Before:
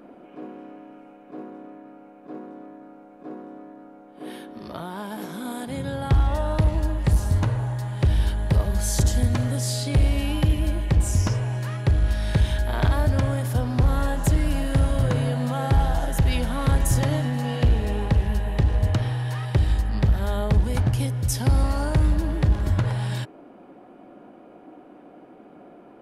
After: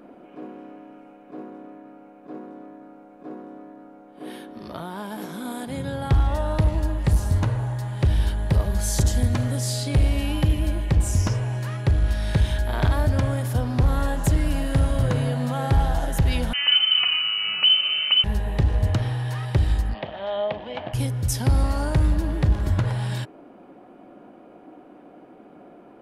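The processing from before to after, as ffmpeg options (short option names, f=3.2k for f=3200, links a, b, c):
-filter_complex "[0:a]asettb=1/sr,asplit=3[a][b][c];[a]atrim=end=16.534[d];[b]atrim=start=16.53:end=18.24,asetpts=PTS-STARTPTS,afade=t=in:d=0.004:c=qsin,afade=t=out:st=1.706:d=0.004:c=qsin,lowpass=f=2.6k:t=q:w=0.5098,lowpass=f=2.6k:t=q:w=0.6013,lowpass=f=2.6k:t=q:w=0.9,lowpass=f=2.6k:t=q:w=2.563,afreqshift=-3100[e];[c]atrim=start=18.236[f];[d][e]acrossfade=d=0.004:c1=hsin:c2=qsin[g];[g][f]acrossfade=d=0.004:c1=qsin:c2=hsin,asplit=3[h][i][j];[h]afade=t=out:st=19.93:d=0.02[k];[i]highpass=400,equalizer=f=410:t=q:w=4:g=-5,equalizer=f=640:t=q:w=4:g=9,equalizer=f=1.4k:t=q:w=4:g=-7,equalizer=f=3.1k:t=q:w=4:g=7,lowpass=f=3.4k:w=0.5412,lowpass=f=3.4k:w=1.3066,afade=t=in:st=19.93:d=0.02,afade=t=out:st=20.93:d=0.02[l];[j]afade=t=in:st=20.93:d=0.02[m];[k][l][m]amix=inputs=3:normalize=0"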